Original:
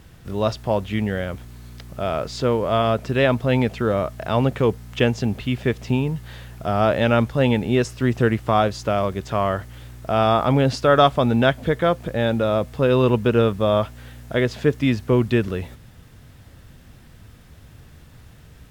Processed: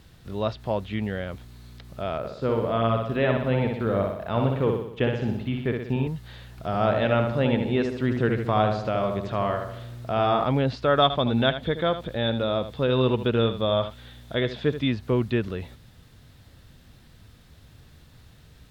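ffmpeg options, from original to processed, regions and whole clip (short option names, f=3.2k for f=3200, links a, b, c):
-filter_complex "[0:a]asettb=1/sr,asplit=3[a][b][c];[a]atrim=end=2.184[d];[b]atrim=start=2.18:end=6.07,asetpts=PTS-STARTPTS,afade=t=in:d=0.004:c=qsin,afade=t=out:st=3.886:d=0.004:c=qsin,equalizer=f=5.6k:t=o:w=2:g=-7,agate=range=-33dB:threshold=-30dB:ratio=3:release=100:detection=peak,aecho=1:1:61|122|183|244|305|366|427:0.631|0.347|0.191|0.105|0.0577|0.0318|0.0175,atrim=end_sample=171549[e];[c]atrim=start=6.066[f];[d][e]acrossfade=d=0.004:c1=hsin:c2=qsin[g];[g][f]acrossfade=d=0.004:c1=qsin:c2=hsin,asettb=1/sr,asplit=3[h][i][j];[h]atrim=end=6.584[k];[i]atrim=start=6.58:end=10.44,asetpts=PTS-STARTPTS,afade=t=in:d=0.004:c=qsin,afade=t=out:st=3.856:d=0.004:c=qsin,acompressor=mode=upward:threshold=-31dB:ratio=2.5:attack=3.2:release=140:knee=2.83:detection=peak,asplit=2[l][m];[m]adelay=75,lowpass=f=2.2k:p=1,volume=-4.5dB,asplit=2[n][o];[o]adelay=75,lowpass=f=2.2k:p=1,volume=0.54,asplit=2[p][q];[q]adelay=75,lowpass=f=2.2k:p=1,volume=0.54,asplit=2[r][s];[s]adelay=75,lowpass=f=2.2k:p=1,volume=0.54,asplit=2[t][u];[u]adelay=75,lowpass=f=2.2k:p=1,volume=0.54,asplit=2[v][w];[w]adelay=75,lowpass=f=2.2k:p=1,volume=0.54,asplit=2[x][y];[y]adelay=75,lowpass=f=2.2k:p=1,volume=0.54[z];[l][n][p][r][t][v][x][z]amix=inputs=8:normalize=0,atrim=end_sample=170226[aa];[j]atrim=start=10.436[ab];[k][aa]acrossfade=d=0.004:c1=hsin:c2=qsin[ac];[ac][ab]acrossfade=d=0.004:c1=qsin:c2=hsin,asettb=1/sr,asplit=3[ad][ae][af];[ad]atrim=end=11.024[ag];[ae]atrim=start=11.02:end=14.88,asetpts=PTS-STARTPTS,afade=t=in:d=0.004:c=qsin,afade=t=out:st=3.856:d=0.004:c=qsin,equalizer=f=3.5k:w=7.9:g=10,aecho=1:1:78:0.266,atrim=end_sample=170226[ah];[af]atrim=start=14.876[ai];[ag][ah]acrossfade=d=0.004:c1=hsin:c2=qsin[aj];[aj][ai]acrossfade=d=0.004:c1=qsin:c2=hsin,acrossover=split=3600[ak][al];[al]acompressor=threshold=-53dB:ratio=4:attack=1:release=60[am];[ak][am]amix=inputs=2:normalize=0,equalizer=f=4k:w=2.3:g=7,volume=-5.5dB"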